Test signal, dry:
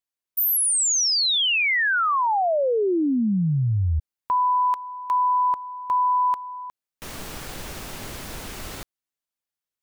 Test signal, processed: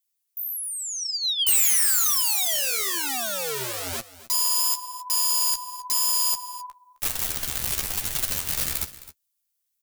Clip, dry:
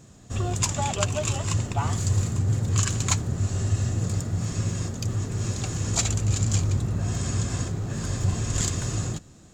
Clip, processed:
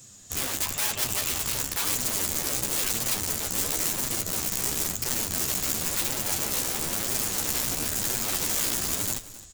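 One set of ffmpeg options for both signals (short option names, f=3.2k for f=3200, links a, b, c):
-filter_complex "[0:a]acrossover=split=7100[a][b];[b]acompressor=threshold=-37dB:ratio=4:attack=1:release=60[c];[a][c]amix=inputs=2:normalize=0,asubboost=boost=7.5:cutoff=57,acrossover=split=170|3000[d][e][f];[f]acompressor=threshold=-44dB:ratio=6:attack=1:release=60[g];[d][e][g]amix=inputs=3:normalize=0,aeval=exprs='(mod(14.1*val(0)+1,2)-1)/14.1':c=same,crystalizer=i=8.5:c=0,flanger=delay=7.5:depth=8.8:regen=23:speed=0.98:shape=triangular,asoftclip=type=tanh:threshold=-9.5dB,asplit=2[h][i];[i]aecho=0:1:263:0.15[j];[h][j]amix=inputs=2:normalize=0,volume=-5dB"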